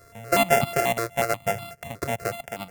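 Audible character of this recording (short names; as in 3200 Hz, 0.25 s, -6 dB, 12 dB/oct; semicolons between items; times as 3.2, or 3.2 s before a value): a buzz of ramps at a fixed pitch in blocks of 64 samples; notches that jump at a steady rate 8.2 Hz 830–1700 Hz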